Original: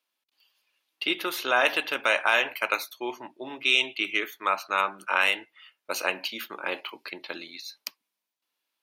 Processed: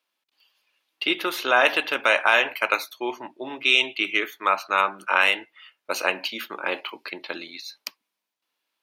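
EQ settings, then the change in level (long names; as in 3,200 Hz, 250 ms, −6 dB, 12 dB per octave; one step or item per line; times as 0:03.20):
low-shelf EQ 72 Hz −10 dB
high-shelf EQ 5,500 Hz −6 dB
+4.5 dB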